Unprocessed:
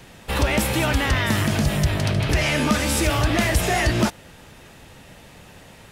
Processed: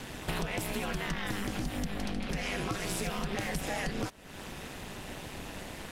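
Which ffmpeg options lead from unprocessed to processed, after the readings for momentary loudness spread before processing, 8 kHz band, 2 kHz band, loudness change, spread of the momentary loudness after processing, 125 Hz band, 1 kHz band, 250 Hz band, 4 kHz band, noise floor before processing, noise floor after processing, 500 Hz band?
3 LU, -13.0 dB, -13.0 dB, -15.0 dB, 9 LU, -16.5 dB, -12.5 dB, -12.5 dB, -13.0 dB, -46 dBFS, -45 dBFS, -12.5 dB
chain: -af "aeval=exprs='val(0)*sin(2*PI*100*n/s)':c=same,acompressor=threshold=0.0126:ratio=6,volume=2"

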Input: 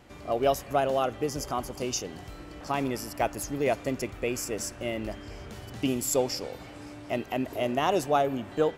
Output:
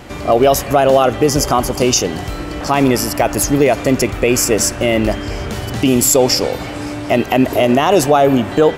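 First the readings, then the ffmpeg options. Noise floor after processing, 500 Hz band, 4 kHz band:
-26 dBFS, +15.0 dB, +17.0 dB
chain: -af "alimiter=level_in=10:limit=0.891:release=50:level=0:latency=1,volume=0.891"

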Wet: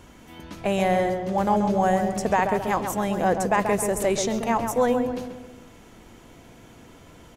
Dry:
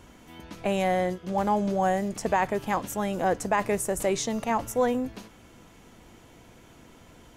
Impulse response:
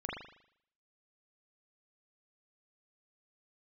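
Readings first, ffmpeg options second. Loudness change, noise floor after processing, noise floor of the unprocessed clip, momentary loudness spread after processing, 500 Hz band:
+3.5 dB, -49 dBFS, -53 dBFS, 7 LU, +4.0 dB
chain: -filter_complex "[0:a]asplit=2[s0][s1];[s1]adelay=134,lowpass=f=1700:p=1,volume=0.531,asplit=2[s2][s3];[s3]adelay=134,lowpass=f=1700:p=1,volume=0.5,asplit=2[s4][s5];[s5]adelay=134,lowpass=f=1700:p=1,volume=0.5,asplit=2[s6][s7];[s7]adelay=134,lowpass=f=1700:p=1,volume=0.5,asplit=2[s8][s9];[s9]adelay=134,lowpass=f=1700:p=1,volume=0.5,asplit=2[s10][s11];[s11]adelay=134,lowpass=f=1700:p=1,volume=0.5[s12];[s0][s2][s4][s6][s8][s10][s12]amix=inputs=7:normalize=0,volume=1.33"

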